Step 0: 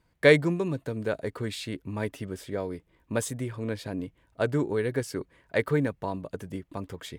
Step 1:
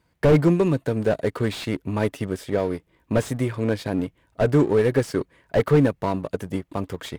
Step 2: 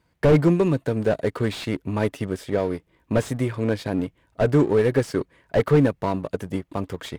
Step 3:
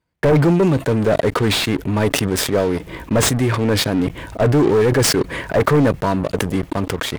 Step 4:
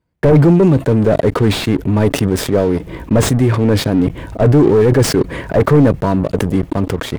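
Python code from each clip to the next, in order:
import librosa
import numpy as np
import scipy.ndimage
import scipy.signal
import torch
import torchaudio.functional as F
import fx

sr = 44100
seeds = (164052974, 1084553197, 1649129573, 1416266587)

y1 = fx.highpass(x, sr, hz=59.0, slope=6)
y1 = fx.leveller(y1, sr, passes=1)
y1 = fx.slew_limit(y1, sr, full_power_hz=53.0)
y1 = y1 * 10.0 ** (5.5 / 20.0)
y2 = fx.high_shelf(y1, sr, hz=10000.0, db=-3.5)
y3 = fx.leveller(y2, sr, passes=3)
y3 = fx.sustainer(y3, sr, db_per_s=30.0)
y3 = y3 * 10.0 ** (-3.5 / 20.0)
y4 = fx.tilt_shelf(y3, sr, db=4.5, hz=760.0)
y4 = y4 * 10.0 ** (1.5 / 20.0)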